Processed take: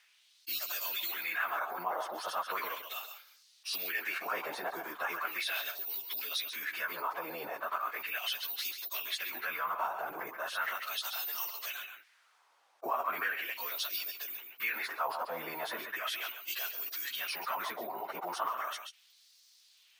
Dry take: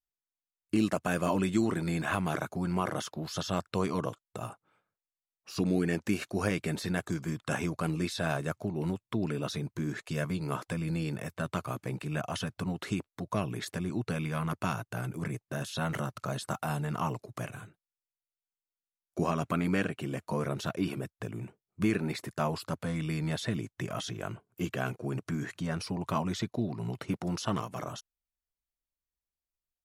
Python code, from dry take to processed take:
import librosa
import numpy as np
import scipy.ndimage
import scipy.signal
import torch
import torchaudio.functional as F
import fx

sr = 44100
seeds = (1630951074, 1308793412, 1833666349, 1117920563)

p1 = (np.kron(scipy.signal.resample_poly(x, 1, 3), np.eye(3)[0]) * 3)[:len(x)]
p2 = fx.high_shelf(p1, sr, hz=3900.0, db=9.5)
p3 = p2 + fx.echo_single(p2, sr, ms=201, db=-14.5, dry=0)
p4 = fx.filter_lfo_bandpass(p3, sr, shape='sine', hz=0.25, low_hz=820.0, high_hz=4700.0, q=2.2)
p5 = scipy.signal.sosfilt(scipy.signal.butter(2, 500.0, 'highpass', fs=sr, output='sos'), p4)
p6 = fx.high_shelf(p5, sr, hz=9600.0, db=-9.5)
p7 = fx.rider(p6, sr, range_db=4, speed_s=2.0)
p8 = p6 + (p7 * 10.0 ** (-2.5 / 20.0))
p9 = fx.stretch_vocoder_free(p8, sr, factor=0.67)
y = fx.env_flatten(p9, sr, amount_pct=50)